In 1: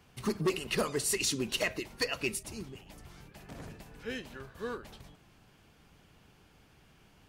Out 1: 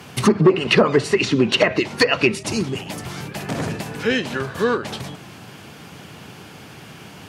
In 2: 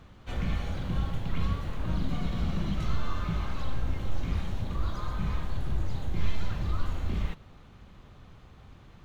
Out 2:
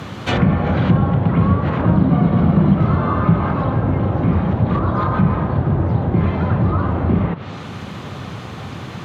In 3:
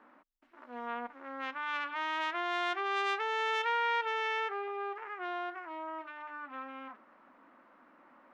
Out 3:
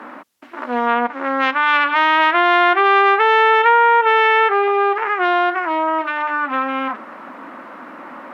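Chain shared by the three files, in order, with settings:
treble cut that deepens with the level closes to 1,100 Hz, closed at −25 dBFS
high-pass filter 100 Hz 24 dB per octave
in parallel at +3 dB: downward compressor, threshold −43 dBFS
on the sum: normalise the peak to −2 dBFS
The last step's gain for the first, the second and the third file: +15.0, +17.0, +18.0 decibels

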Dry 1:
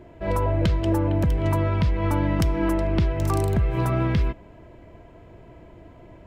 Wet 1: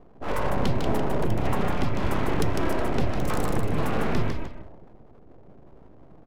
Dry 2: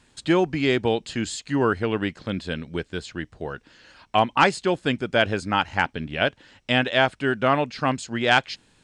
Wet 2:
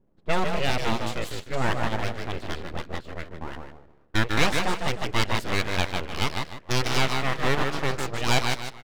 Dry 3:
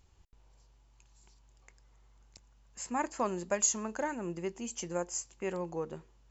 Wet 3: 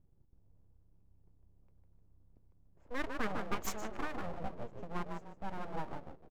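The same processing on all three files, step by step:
echo with shifted repeats 152 ms, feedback 36%, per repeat −31 Hz, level −4.5 dB
low-pass that shuts in the quiet parts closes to 330 Hz, open at −19.5 dBFS
full-wave rectification
level −1.5 dB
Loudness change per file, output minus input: −4.5, −4.0, −7.0 LU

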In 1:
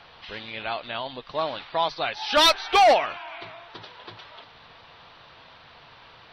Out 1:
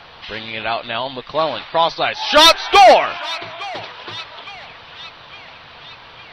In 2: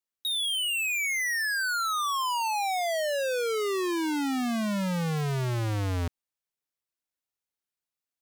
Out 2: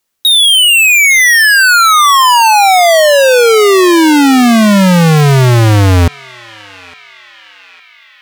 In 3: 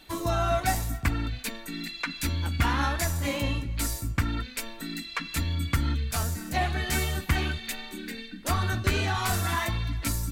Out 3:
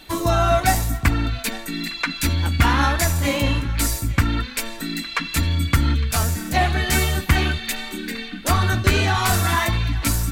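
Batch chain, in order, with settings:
feedback echo with a band-pass in the loop 859 ms, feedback 67%, band-pass 2,500 Hz, level −16 dB
normalise the peak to −3 dBFS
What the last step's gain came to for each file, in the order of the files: +9.0, +22.0, +8.0 decibels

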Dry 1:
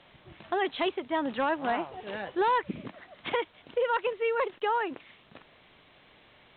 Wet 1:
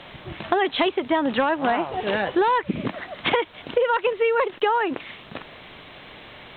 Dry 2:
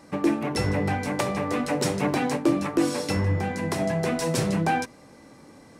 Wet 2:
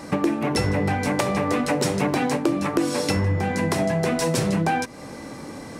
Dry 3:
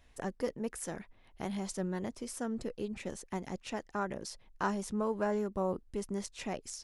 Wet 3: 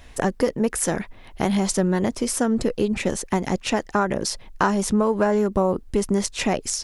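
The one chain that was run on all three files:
downward compressor 4 to 1, threshold −34 dBFS
loudness normalisation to −23 LKFS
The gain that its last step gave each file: +15.0, +13.0, +17.5 decibels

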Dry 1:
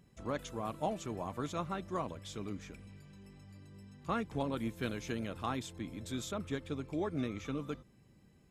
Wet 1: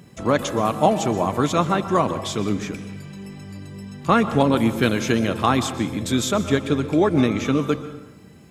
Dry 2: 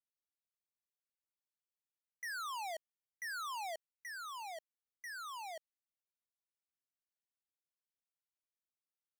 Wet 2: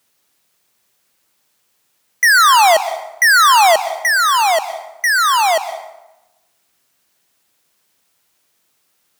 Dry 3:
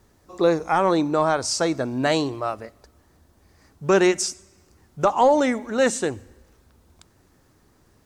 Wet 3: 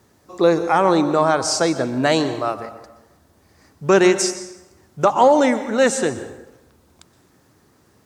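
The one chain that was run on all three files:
high-pass filter 96 Hz 12 dB per octave
dense smooth reverb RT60 1 s, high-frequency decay 0.65×, pre-delay 110 ms, DRR 12 dB
normalise the peak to −3 dBFS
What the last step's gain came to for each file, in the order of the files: +18.0, +32.0, +3.5 decibels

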